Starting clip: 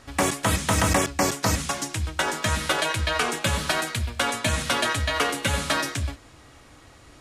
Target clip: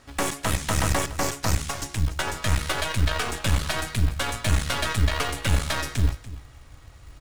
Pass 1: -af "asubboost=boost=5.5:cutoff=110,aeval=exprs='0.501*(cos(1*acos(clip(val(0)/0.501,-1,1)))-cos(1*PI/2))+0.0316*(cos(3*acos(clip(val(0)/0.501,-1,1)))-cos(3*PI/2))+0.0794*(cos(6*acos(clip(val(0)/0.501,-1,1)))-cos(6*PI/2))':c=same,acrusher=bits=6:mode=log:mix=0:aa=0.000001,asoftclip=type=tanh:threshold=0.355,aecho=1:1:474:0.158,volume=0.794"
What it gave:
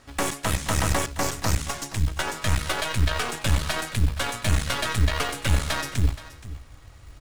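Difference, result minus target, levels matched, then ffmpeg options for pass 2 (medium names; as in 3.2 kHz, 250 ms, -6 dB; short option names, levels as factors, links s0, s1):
echo 185 ms late
-af "asubboost=boost=5.5:cutoff=110,aeval=exprs='0.501*(cos(1*acos(clip(val(0)/0.501,-1,1)))-cos(1*PI/2))+0.0316*(cos(3*acos(clip(val(0)/0.501,-1,1)))-cos(3*PI/2))+0.0794*(cos(6*acos(clip(val(0)/0.501,-1,1)))-cos(6*PI/2))':c=same,acrusher=bits=6:mode=log:mix=0:aa=0.000001,asoftclip=type=tanh:threshold=0.355,aecho=1:1:289:0.158,volume=0.794"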